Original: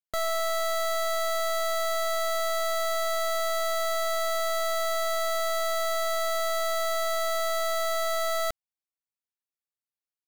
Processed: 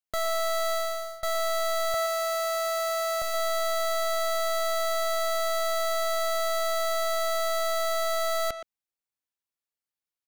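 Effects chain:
0:00.73–0:01.23: fade out
0:01.94–0:03.22: Butterworth high-pass 240 Hz 48 dB per octave
far-end echo of a speakerphone 120 ms, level −7 dB

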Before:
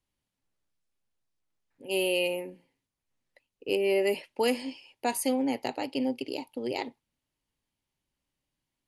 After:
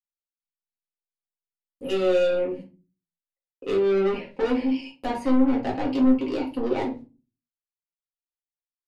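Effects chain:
noise gate −52 dBFS, range −52 dB
treble cut that deepens with the level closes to 2,100 Hz, closed at −28 dBFS
low-shelf EQ 210 Hz +5 dB
in parallel at +2.5 dB: downward compressor, threshold −35 dBFS, peak gain reduction 13.5 dB
on the sum: soft clipping −26.5 dBFS, distortion −9 dB
rectangular room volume 130 cubic metres, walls furnished, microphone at 2 metres

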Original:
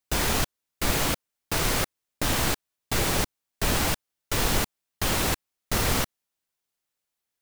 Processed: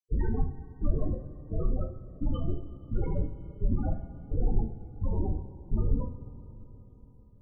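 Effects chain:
spectral peaks only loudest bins 8
coupled-rooms reverb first 0.5 s, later 4.7 s, from −18 dB, DRR 1.5 dB

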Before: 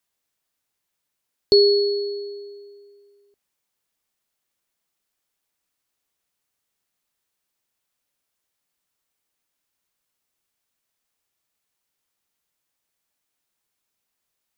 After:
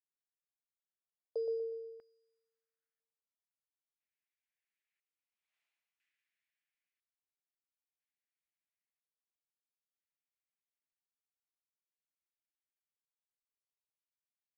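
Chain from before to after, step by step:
source passing by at 0:05.60, 37 m/s, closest 3.7 metres
high-pass filter sweep 200 Hz → 2,300 Hz, 0:00.15–0:03.54
on a send: repeating echo 121 ms, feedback 36%, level −6 dB
on the sum: auto-filter band-pass square 0.5 Hz 640–1,700 Hz
level +12 dB

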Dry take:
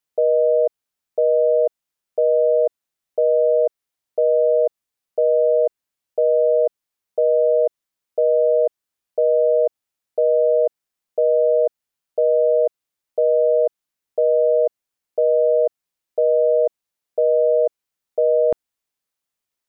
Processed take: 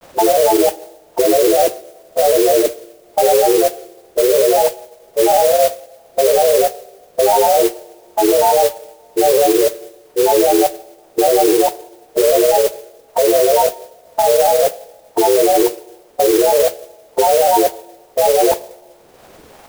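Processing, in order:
compressor on every frequency bin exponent 0.6
upward compression, threshold −29 dBFS
granular cloud, grains 20 per second, spray 16 ms, pitch spread up and down by 7 semitones
coupled-rooms reverb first 0.96 s, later 2.9 s, DRR 15 dB
noise that follows the level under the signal 11 dB
level +5 dB

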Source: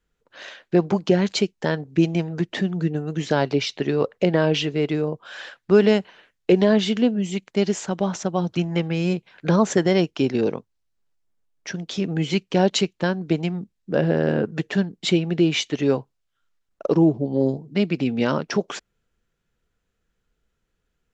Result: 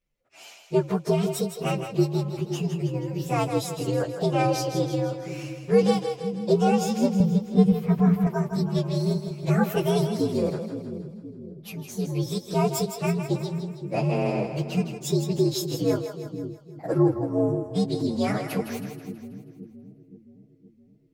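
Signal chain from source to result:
partials spread apart or drawn together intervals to 123%
0:07.20–0:08.27: bass and treble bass +13 dB, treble −12 dB
echo with a time of its own for lows and highs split 370 Hz, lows 519 ms, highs 161 ms, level −8 dB
level −2.5 dB

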